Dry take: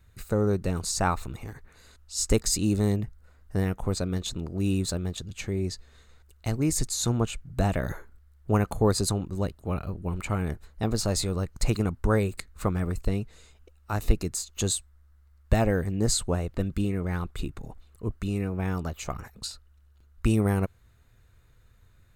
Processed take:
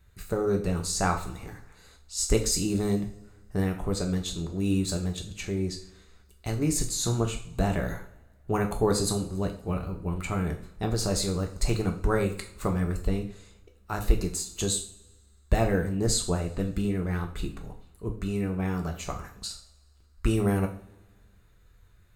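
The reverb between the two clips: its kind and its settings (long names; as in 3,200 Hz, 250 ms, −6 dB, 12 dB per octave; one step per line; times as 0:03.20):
coupled-rooms reverb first 0.43 s, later 1.7 s, from −22 dB, DRR 2.5 dB
level −2 dB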